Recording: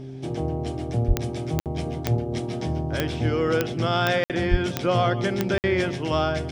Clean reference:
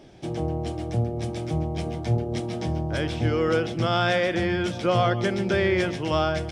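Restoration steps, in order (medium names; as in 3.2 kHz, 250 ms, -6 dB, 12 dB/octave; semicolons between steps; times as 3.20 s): de-click; de-hum 132 Hz, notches 3; 1.07–1.19 s: high-pass 140 Hz 24 dB/octave; 4.50–4.62 s: high-pass 140 Hz 24 dB/octave; interpolate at 1.60/4.24/5.58 s, 58 ms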